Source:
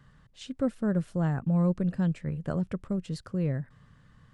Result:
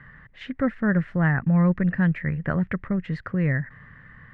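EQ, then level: dynamic bell 460 Hz, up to -5 dB, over -40 dBFS, Q 0.73; resonant low-pass 1.9 kHz, resonance Q 6.3; +7.0 dB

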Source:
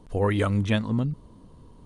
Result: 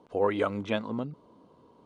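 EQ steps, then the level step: band-pass 490–6900 Hz; tilt EQ -3 dB/octave; band-stop 1.8 kHz, Q 8.2; 0.0 dB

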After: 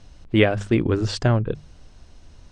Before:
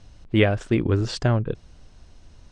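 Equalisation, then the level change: hum notches 50/100/150/200 Hz; +2.0 dB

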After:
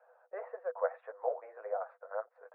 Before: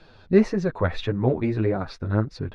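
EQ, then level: rippled Chebyshev high-pass 480 Hz, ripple 6 dB; low-pass 1.2 kHz 24 dB/octave; distance through air 150 m; -1.5 dB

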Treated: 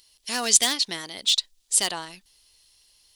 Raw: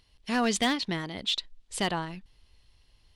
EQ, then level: tone controls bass -12 dB, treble +13 dB; treble shelf 3.5 kHz +8 dB; -2.0 dB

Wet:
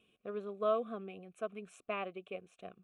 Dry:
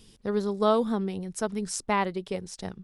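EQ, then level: vowel filter a; static phaser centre 2.1 kHz, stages 4; +8.0 dB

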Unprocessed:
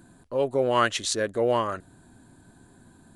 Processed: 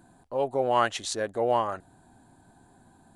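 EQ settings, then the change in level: peaking EQ 790 Hz +11.5 dB 0.54 oct; -5.0 dB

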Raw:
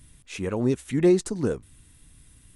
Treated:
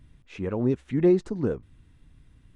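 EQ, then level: tape spacing loss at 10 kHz 26 dB; 0.0 dB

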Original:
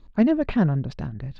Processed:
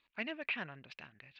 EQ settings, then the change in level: band-pass filter 2.5 kHz, Q 3.8; +4.5 dB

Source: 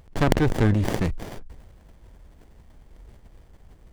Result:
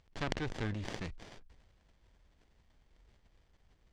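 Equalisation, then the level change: distance through air 140 m; pre-emphasis filter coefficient 0.9; treble shelf 11 kHz -10.5 dB; +2.0 dB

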